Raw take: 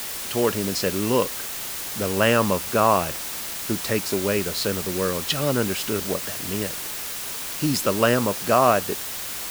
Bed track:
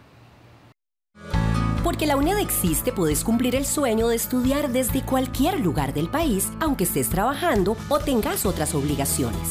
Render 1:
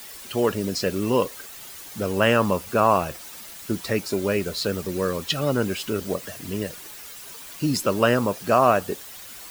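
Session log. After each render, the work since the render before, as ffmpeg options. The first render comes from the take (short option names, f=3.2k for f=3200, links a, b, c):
-af "afftdn=nr=11:nf=-32"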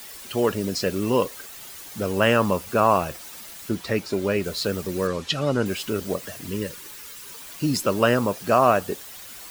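-filter_complex "[0:a]asettb=1/sr,asplit=3[a][b][c];[a]atrim=end=3.694[d];[b]atrim=start=3.69:end=4.44,asetpts=PTS-STARTPTS,afade=t=in:d=0.004:c=qsin,afade=t=out:st=0.746:d=0.004:c=qsin,acrossover=split=5100[e][f];[f]acompressor=threshold=-42dB:ratio=4:attack=1:release=60[g];[e][g]amix=inputs=2:normalize=0[h];[c]atrim=start=4.436[i];[d][h]acrossfade=d=0.004:c1=hsin:c2=qsin[j];[j][i]acrossfade=d=0.004:c1=qsin:c2=hsin,asettb=1/sr,asplit=3[k][l][m];[k]atrim=end=5.074[n];[l]atrim=start=5.07:end=5.66,asetpts=PTS-STARTPTS,afade=t=in:d=0.004:c=qsin,afade=t=out:st=0.586:d=0.004:c=qsin,lowpass=7.3k[o];[m]atrim=start=5.656[p];[n][o]acrossfade=d=0.004:c1=hsin:c2=qsin[q];[q][p]acrossfade=d=0.004:c1=qsin:c2=hsin,asettb=1/sr,asplit=3[r][s][t];[r]atrim=end=6.484[u];[s]atrim=start=6.48:end=7.32,asetpts=PTS-STARTPTS,afade=t=in:d=0.004:c=qsin,afade=t=out:st=0.836:d=0.004:c=qsin,asuperstop=centerf=700:order=8:qfactor=3[v];[t]atrim=start=7.316[w];[u][v]acrossfade=d=0.004:c1=hsin:c2=qsin[x];[x][w]acrossfade=d=0.004:c1=qsin:c2=hsin"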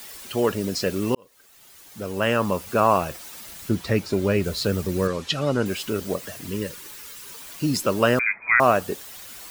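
-filter_complex "[0:a]asettb=1/sr,asplit=3[a][b][c];[a]atrim=end=3.464[d];[b]atrim=start=3.46:end=5.08,asetpts=PTS-STARTPTS,afade=t=in:d=0.004:c=qsin,afade=t=out:st=1.616:d=0.004:c=qsin,equalizer=f=62:w=0.4:g=8.5[e];[c]atrim=start=5.076[f];[d][e]acrossfade=d=0.004:c1=hsin:c2=qsin[g];[g][f]acrossfade=d=0.004:c1=qsin:c2=hsin,asettb=1/sr,asplit=3[h][i][j];[h]atrim=end=8.194[k];[i]atrim=start=8.19:end=8.6,asetpts=PTS-STARTPTS,afade=t=in:d=0.004:c=qsin,afade=t=out:st=0.406:d=0.004:c=qsin,lowpass=f=2.2k:t=q:w=0.5098,lowpass=f=2.2k:t=q:w=0.6013,lowpass=f=2.2k:t=q:w=0.9,lowpass=f=2.2k:t=q:w=2.563,afreqshift=-2600[l];[j]atrim=start=8.596[m];[k][l]acrossfade=d=0.004:c1=hsin:c2=qsin[n];[n][m]acrossfade=d=0.004:c1=qsin:c2=hsin,asplit=2[o][p];[o]atrim=end=1.15,asetpts=PTS-STARTPTS,afade=t=out:st=1.146:d=0.004:c=hsin[q];[p]atrim=start=1.15,asetpts=PTS-STARTPTS,afade=t=in:d=1.63[r];[q][r]concat=n=2:v=0:a=1"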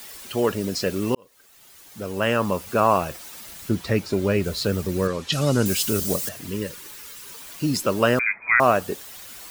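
-filter_complex "[0:a]asettb=1/sr,asplit=3[a][b][c];[a]atrim=end=5.324[d];[b]atrim=start=5.32:end=6.29,asetpts=PTS-STARTPTS,afade=t=in:d=0.004:c=qsin,afade=t=out:st=0.966:d=0.004:c=qsin,bass=f=250:g=6,treble=f=4k:g=13[e];[c]atrim=start=6.286[f];[d][e]acrossfade=d=0.004:c1=hsin:c2=qsin[g];[g][f]acrossfade=d=0.004:c1=qsin:c2=hsin"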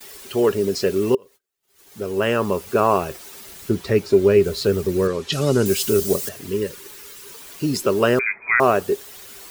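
-af "agate=range=-30dB:threshold=-47dB:ratio=16:detection=peak,equalizer=f=400:t=o:w=0.27:g=12.5"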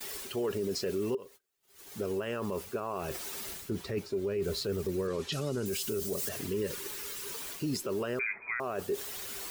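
-af "areverse,acompressor=threshold=-24dB:ratio=16,areverse,alimiter=level_in=0.5dB:limit=-24dB:level=0:latency=1:release=52,volume=-0.5dB"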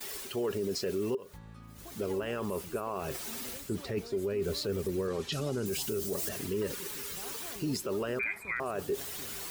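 -filter_complex "[1:a]volume=-28dB[a];[0:a][a]amix=inputs=2:normalize=0"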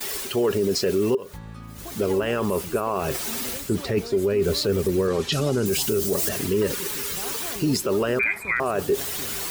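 -af "volume=10.5dB"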